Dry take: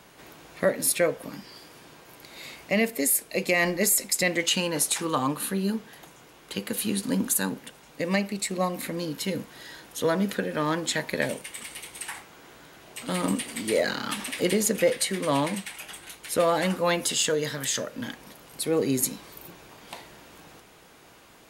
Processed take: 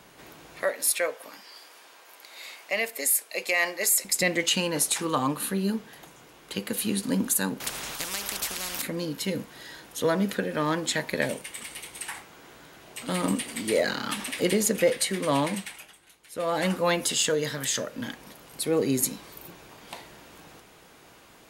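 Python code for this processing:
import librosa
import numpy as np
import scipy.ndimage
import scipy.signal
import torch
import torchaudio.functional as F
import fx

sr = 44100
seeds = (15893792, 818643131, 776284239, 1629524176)

y = fx.highpass(x, sr, hz=630.0, slope=12, at=(0.62, 4.05))
y = fx.spectral_comp(y, sr, ratio=10.0, at=(7.6, 8.82))
y = fx.edit(y, sr, fx.fade_down_up(start_s=15.63, length_s=1.02, db=-13.5, fade_s=0.31), tone=tone)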